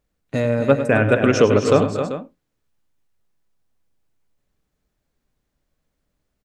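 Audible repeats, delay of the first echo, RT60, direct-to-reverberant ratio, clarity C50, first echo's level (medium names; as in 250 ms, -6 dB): 3, 101 ms, no reverb, no reverb, no reverb, -11.5 dB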